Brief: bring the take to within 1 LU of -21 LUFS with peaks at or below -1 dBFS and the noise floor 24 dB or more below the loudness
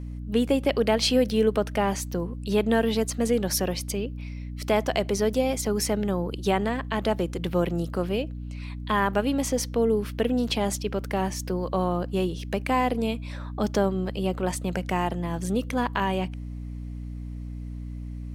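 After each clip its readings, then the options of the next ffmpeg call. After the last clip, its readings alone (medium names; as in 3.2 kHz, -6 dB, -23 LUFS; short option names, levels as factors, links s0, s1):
hum 60 Hz; highest harmonic 300 Hz; hum level -32 dBFS; loudness -26.0 LUFS; peak level -9.5 dBFS; loudness target -21.0 LUFS
-> -af "bandreject=f=60:t=h:w=6,bandreject=f=120:t=h:w=6,bandreject=f=180:t=h:w=6,bandreject=f=240:t=h:w=6,bandreject=f=300:t=h:w=6"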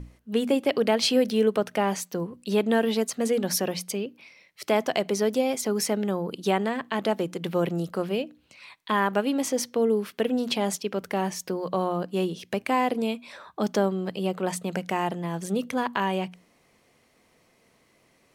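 hum not found; loudness -26.5 LUFS; peak level -9.5 dBFS; loudness target -21.0 LUFS
-> -af "volume=1.88"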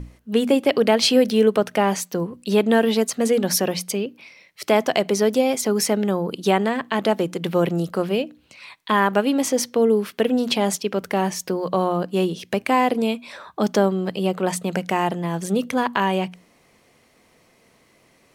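loudness -21.0 LUFS; peak level -4.0 dBFS; noise floor -59 dBFS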